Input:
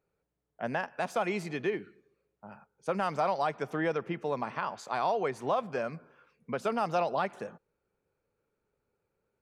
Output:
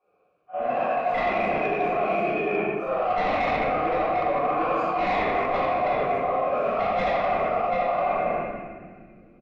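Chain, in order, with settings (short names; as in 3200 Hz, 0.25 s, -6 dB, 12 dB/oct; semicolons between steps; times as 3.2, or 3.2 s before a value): phase scrambler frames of 0.2 s; vowel filter a; bell 820 Hz -8.5 dB 0.36 oct; echo 0.744 s -4.5 dB; in parallel at 0 dB: level quantiser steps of 19 dB; on the sum: sine folder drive 12 dB, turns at -20 dBFS; bell 7000 Hz -7.5 dB 2.1 oct; reverb, pre-delay 3 ms, DRR -12.5 dB; soft clip -4 dBFS, distortion -21 dB; reverse; compressor 12:1, threshold -21 dBFS, peak gain reduction 12.5 dB; reverse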